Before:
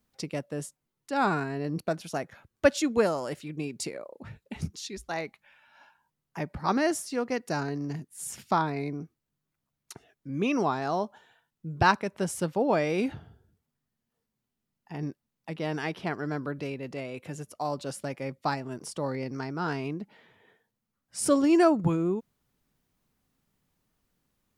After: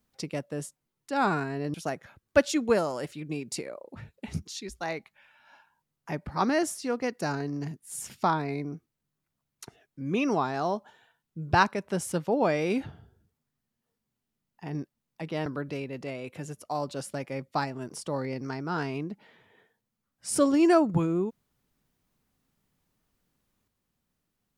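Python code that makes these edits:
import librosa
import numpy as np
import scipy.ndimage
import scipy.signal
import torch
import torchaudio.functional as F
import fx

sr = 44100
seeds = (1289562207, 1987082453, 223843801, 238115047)

y = fx.edit(x, sr, fx.cut(start_s=1.74, length_s=0.28),
    fx.cut(start_s=15.74, length_s=0.62), tone=tone)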